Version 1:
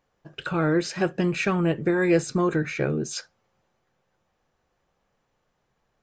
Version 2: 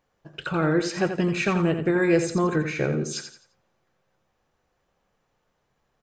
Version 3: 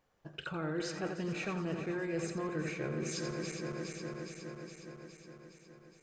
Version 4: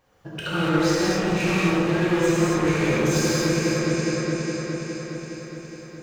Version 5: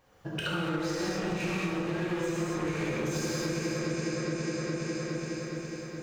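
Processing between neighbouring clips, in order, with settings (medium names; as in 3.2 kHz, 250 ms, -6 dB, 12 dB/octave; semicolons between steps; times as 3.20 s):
feedback delay 86 ms, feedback 33%, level -8.5 dB
backward echo that repeats 207 ms, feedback 80%, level -11 dB; reverse; compression 5:1, threshold -32 dBFS, peak gain reduction 15.5 dB; reverse; trim -3 dB
wavefolder -32.5 dBFS; gated-style reverb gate 310 ms flat, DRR -7.5 dB; trim +8.5 dB
compression 6:1, threshold -29 dBFS, peak gain reduction 12.5 dB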